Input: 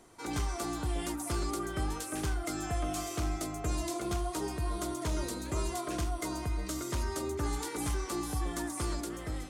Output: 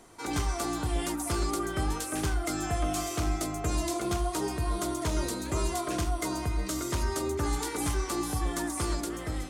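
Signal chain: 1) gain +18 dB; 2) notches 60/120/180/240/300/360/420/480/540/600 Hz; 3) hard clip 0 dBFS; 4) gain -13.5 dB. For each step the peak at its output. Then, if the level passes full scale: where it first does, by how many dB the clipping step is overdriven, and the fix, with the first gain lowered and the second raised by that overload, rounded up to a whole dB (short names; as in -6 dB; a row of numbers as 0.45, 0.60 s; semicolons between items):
-7.0, -5.0, -5.0, -18.5 dBFS; no overload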